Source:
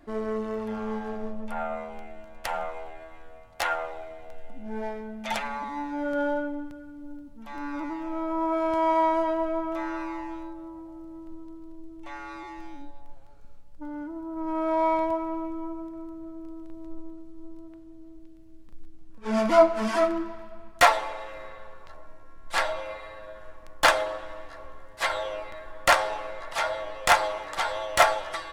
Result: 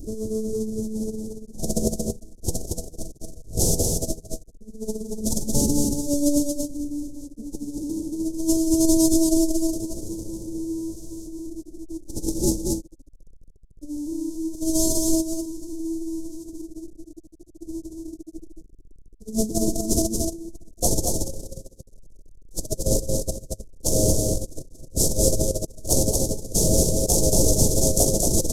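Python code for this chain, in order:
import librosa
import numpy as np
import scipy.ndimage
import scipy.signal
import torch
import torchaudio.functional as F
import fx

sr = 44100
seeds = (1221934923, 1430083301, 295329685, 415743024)

p1 = fx.delta_mod(x, sr, bps=64000, step_db=-15.5)
p2 = scipy.signal.sosfilt(scipy.signal.cheby1(3, 1.0, [440.0, 6100.0], 'bandstop', fs=sr, output='sos'), p1)
p3 = fx.low_shelf(p2, sr, hz=210.0, db=10.0)
p4 = fx.over_compress(p3, sr, threshold_db=-26.0, ratio=-0.5)
y = p4 + fx.echo_single(p4, sr, ms=229, db=-3.5, dry=0)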